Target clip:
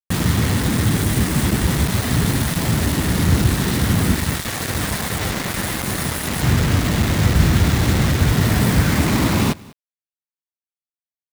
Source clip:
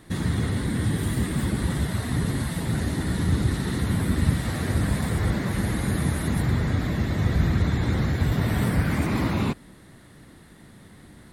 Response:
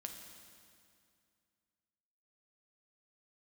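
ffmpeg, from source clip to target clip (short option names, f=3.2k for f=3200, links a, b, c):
-filter_complex "[0:a]asettb=1/sr,asplit=3[a][b][c];[a]atrim=end=4.164[d];[b]atrim=start=4.16:end=6.43,asetpts=PTS-STARTPTS,afade=t=in:d=0.004:c=qsin,afade=t=out:st=2.266:d=0.004:c=qsin,lowshelf=f=390:g=-9[e];[c]atrim=start=6.426[f];[d][e]acrossfade=d=0.004:c1=hsin:c2=qsin[g];[g][f]acrossfade=d=0.004:c1=qsin:c2=hsin,acrusher=bits=4:mix=0:aa=0.000001,aecho=1:1:195:0.0708,volume=6.5dB"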